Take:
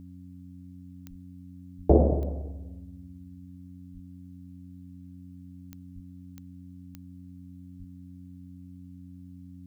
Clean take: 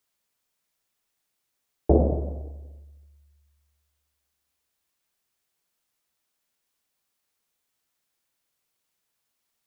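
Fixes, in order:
click removal
hum removal 90.2 Hz, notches 3
high-pass at the plosives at 0:01.09/0:01.77/0:03.93/0:05.94/0:07.78

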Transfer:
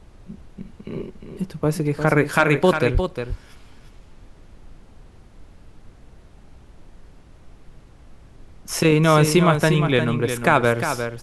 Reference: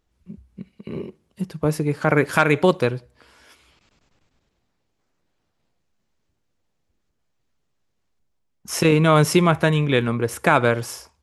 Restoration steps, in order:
high-pass at the plosives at 0:02.93
noise reduction from a noise print 25 dB
echo removal 354 ms −8 dB

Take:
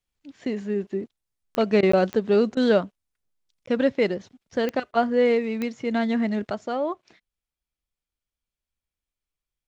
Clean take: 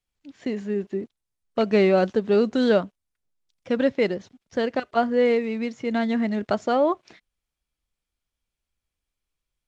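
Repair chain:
click removal
repair the gap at 0:01.92/0:03.66, 14 ms
repair the gap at 0:01.81/0:02.55/0:04.92, 17 ms
level correction +6 dB, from 0:06.50

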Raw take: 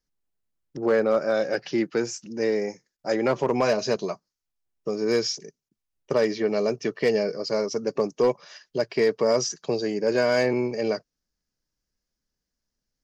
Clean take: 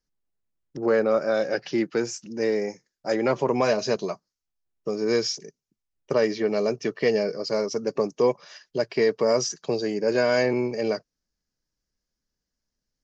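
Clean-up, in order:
clipped peaks rebuilt −13.5 dBFS
repair the gap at 0:02.97/0:05.69, 18 ms

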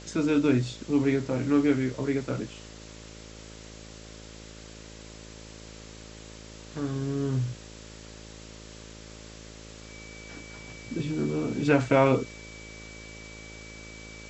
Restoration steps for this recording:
hum removal 54.3 Hz, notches 11
notch filter 2,300 Hz, Q 30
noise reduction from a noise print 26 dB

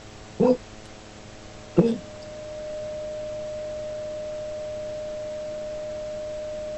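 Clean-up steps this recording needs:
clipped peaks rebuilt −6 dBFS
hum removal 107 Hz, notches 7
notch filter 610 Hz, Q 30
noise reduction from a noise print 30 dB

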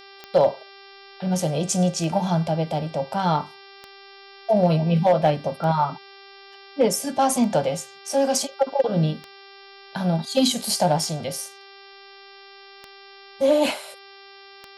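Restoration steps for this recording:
clipped peaks rebuilt −10 dBFS
click removal
hum removal 394 Hz, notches 14

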